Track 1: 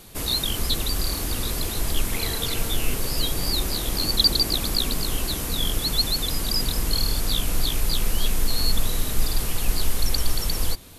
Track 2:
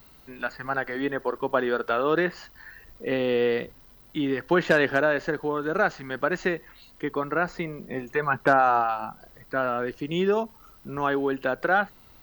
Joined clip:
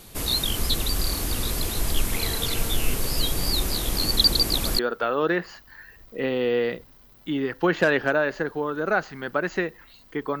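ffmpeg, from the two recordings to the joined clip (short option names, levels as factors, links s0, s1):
-filter_complex "[1:a]asplit=2[s0][s1];[0:a]apad=whole_dur=10.4,atrim=end=10.4,atrim=end=4.792[s2];[s1]atrim=start=1.668:end=7.28[s3];[s0]atrim=start=0.9:end=1.67,asetpts=PTS-STARTPTS,volume=0.158,afade=t=in:d=0.004:c=hsin,afade=t=out:st=0.766:d=0.004:c=hsin,adelay=4020[s4];[s2][s3]acrossfade=d=0.004:c1=hsin:c2=hsin[s5];[s5][s4]amix=inputs=2:normalize=0"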